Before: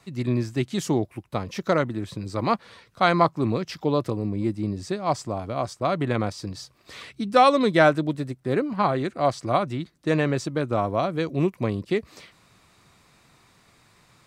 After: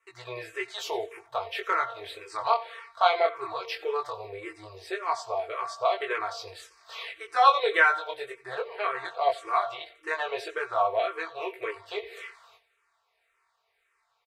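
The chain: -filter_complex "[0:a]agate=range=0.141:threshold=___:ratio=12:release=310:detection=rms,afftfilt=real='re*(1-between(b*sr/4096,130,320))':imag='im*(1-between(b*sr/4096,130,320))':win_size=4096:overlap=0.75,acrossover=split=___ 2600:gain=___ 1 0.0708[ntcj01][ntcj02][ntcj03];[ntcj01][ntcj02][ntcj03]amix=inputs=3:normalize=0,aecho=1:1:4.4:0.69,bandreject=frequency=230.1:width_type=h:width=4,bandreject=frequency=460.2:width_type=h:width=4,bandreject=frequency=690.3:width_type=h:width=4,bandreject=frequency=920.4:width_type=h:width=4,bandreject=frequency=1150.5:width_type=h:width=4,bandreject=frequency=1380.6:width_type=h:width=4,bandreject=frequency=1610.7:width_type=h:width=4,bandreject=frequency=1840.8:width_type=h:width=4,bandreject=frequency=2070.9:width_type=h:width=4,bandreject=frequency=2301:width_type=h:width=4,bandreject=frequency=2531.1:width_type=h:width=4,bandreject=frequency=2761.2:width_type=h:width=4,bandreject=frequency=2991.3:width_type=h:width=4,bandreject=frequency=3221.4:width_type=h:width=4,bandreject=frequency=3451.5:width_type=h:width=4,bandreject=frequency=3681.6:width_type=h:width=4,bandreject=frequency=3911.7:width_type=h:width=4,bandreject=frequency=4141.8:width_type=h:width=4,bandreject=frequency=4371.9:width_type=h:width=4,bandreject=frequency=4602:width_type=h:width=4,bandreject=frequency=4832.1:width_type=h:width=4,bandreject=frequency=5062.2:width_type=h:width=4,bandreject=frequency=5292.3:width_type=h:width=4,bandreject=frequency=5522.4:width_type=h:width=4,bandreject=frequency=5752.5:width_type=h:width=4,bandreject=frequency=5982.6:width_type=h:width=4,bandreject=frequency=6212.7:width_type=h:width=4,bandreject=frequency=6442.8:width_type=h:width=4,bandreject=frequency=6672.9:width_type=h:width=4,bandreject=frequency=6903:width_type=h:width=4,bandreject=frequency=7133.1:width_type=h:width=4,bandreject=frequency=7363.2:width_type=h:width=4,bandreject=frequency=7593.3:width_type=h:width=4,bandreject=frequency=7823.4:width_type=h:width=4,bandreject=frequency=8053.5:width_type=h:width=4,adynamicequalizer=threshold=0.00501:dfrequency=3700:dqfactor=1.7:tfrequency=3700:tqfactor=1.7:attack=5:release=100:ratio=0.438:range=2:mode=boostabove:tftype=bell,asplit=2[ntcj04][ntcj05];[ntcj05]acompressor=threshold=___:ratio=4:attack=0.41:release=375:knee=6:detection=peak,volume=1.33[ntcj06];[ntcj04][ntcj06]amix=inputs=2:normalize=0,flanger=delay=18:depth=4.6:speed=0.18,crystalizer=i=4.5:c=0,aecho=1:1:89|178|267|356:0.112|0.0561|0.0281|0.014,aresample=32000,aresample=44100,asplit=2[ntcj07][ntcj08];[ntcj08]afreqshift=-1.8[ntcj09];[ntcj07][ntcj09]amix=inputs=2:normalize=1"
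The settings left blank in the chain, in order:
0.00316, 460, 0.126, 0.0251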